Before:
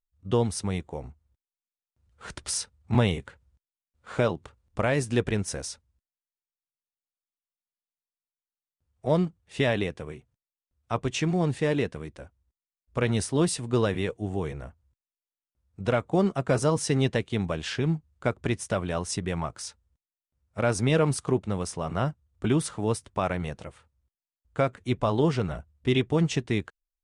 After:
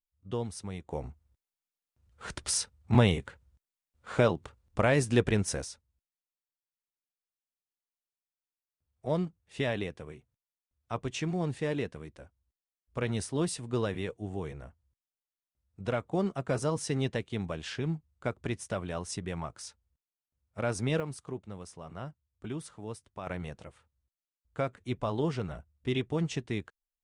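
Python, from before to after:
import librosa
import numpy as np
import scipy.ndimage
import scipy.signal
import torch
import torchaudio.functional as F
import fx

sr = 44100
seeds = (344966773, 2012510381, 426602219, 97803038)

y = fx.gain(x, sr, db=fx.steps((0.0, -10.0), (0.89, 0.0), (5.64, -6.5), (21.0, -14.0), (23.27, -7.0)))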